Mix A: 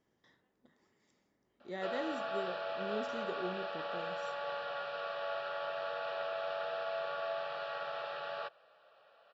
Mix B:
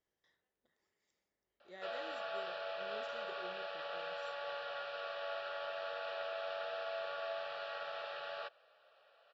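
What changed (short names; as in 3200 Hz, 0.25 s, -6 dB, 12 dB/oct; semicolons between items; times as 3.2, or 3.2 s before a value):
speech -7.0 dB; master: add graphic EQ 125/250/1000 Hz -8/-12/-5 dB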